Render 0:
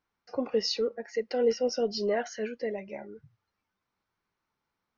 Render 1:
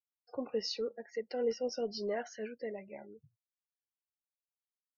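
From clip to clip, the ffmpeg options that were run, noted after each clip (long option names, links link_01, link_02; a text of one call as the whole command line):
ffmpeg -i in.wav -af "afftdn=noise_reduction=33:noise_floor=-49,volume=-7.5dB" out.wav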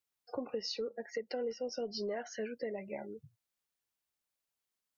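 ffmpeg -i in.wav -af "acompressor=threshold=-42dB:ratio=6,volume=7dB" out.wav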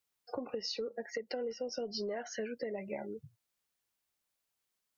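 ffmpeg -i in.wav -af "acompressor=threshold=-38dB:ratio=4,volume=3.5dB" out.wav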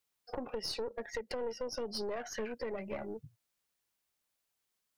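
ffmpeg -i in.wav -af "aeval=exprs='(tanh(50.1*val(0)+0.55)-tanh(0.55))/50.1':channel_layout=same,volume=3.5dB" out.wav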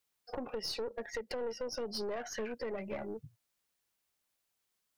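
ffmpeg -i in.wav -af "asoftclip=type=tanh:threshold=-28.5dB,volume=1dB" out.wav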